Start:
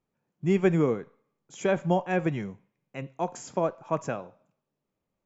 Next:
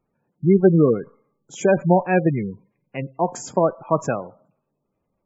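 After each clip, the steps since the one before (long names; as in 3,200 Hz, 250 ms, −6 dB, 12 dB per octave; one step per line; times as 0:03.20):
gate on every frequency bin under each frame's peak −20 dB strong
level +8.5 dB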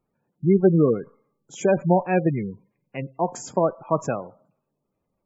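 dynamic equaliser 1,600 Hz, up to −4 dB, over −46 dBFS, Q 6.8
level −2.5 dB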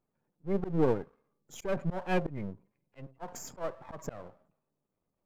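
gain on one half-wave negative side −12 dB
volume swells 179 ms
level −3.5 dB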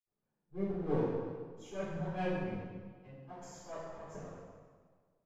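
convolution reverb RT60 1.6 s, pre-delay 63 ms
level +6 dB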